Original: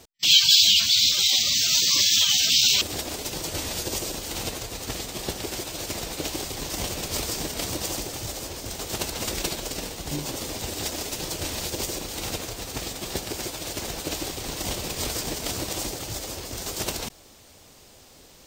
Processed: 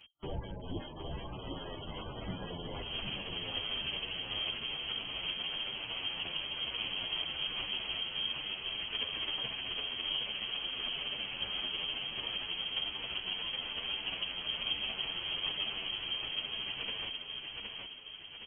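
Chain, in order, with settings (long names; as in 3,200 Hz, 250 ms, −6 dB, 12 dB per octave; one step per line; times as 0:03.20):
sub-octave generator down 2 octaves, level +3 dB
downward compressor 2.5 to 1, threshold −26 dBFS, peak gain reduction 10 dB
hard clipping −16.5 dBFS, distortion −36 dB
repeating echo 766 ms, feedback 48%, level −4 dB
voice inversion scrambler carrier 3,200 Hz
barber-pole flanger 9.5 ms −1.1 Hz
level −5 dB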